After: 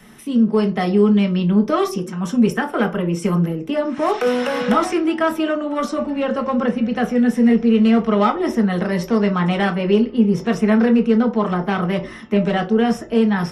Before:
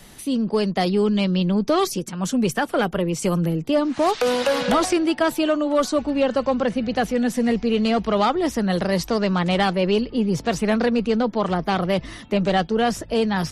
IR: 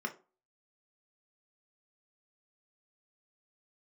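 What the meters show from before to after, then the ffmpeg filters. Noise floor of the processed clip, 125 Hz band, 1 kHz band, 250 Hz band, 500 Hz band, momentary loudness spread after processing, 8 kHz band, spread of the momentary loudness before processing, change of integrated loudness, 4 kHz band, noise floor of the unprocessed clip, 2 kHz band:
−35 dBFS, +3.5 dB, +1.0 dB, +5.0 dB, +1.5 dB, 7 LU, can't be measured, 3 LU, +3.0 dB, −3.5 dB, −40 dBFS, +2.0 dB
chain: -filter_complex "[1:a]atrim=start_sample=2205[link_01];[0:a][link_01]afir=irnorm=-1:irlink=0,volume=-1.5dB"

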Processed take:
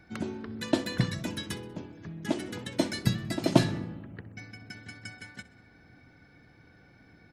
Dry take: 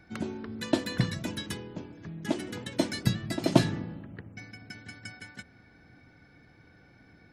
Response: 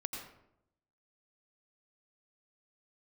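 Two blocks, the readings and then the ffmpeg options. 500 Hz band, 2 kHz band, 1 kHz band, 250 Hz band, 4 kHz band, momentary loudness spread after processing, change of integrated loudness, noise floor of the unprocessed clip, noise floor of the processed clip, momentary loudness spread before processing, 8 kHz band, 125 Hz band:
0.0 dB, 0.0 dB, 0.0 dB, 0.0 dB, 0.0 dB, 19 LU, 0.0 dB, −58 dBFS, −58 dBFS, 19 LU, 0.0 dB, 0.0 dB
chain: -af "aecho=1:1:64|128|192|256:0.106|0.054|0.0276|0.0141"

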